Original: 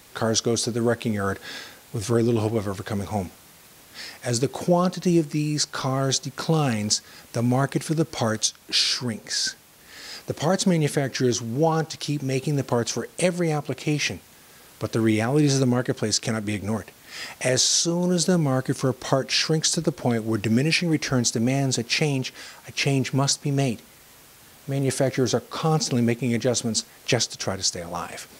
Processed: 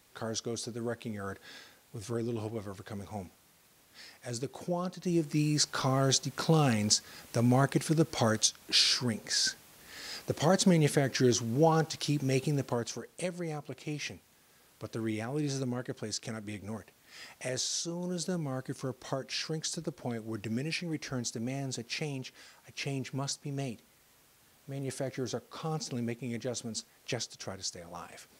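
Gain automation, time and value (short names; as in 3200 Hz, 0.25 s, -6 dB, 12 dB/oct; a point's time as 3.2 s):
4.98 s -13.5 dB
5.39 s -4 dB
12.35 s -4 dB
13.03 s -13.5 dB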